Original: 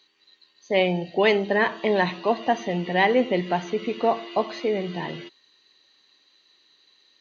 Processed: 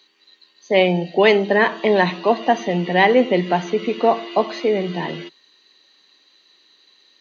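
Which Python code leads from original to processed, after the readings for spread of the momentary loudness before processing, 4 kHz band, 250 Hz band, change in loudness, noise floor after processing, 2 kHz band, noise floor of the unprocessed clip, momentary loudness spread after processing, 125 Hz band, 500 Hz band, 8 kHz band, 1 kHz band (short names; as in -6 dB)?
8 LU, +5.0 dB, +5.5 dB, +5.5 dB, -58 dBFS, +5.0 dB, -63 dBFS, 8 LU, +5.5 dB, +6.0 dB, n/a, +5.5 dB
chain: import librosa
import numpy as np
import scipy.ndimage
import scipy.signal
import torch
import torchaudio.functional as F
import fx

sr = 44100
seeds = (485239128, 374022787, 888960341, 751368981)

y = scipy.signal.sosfilt(scipy.signal.ellip(4, 1.0, 40, 160.0, 'highpass', fs=sr, output='sos'), x)
y = y * 10.0 ** (6.0 / 20.0)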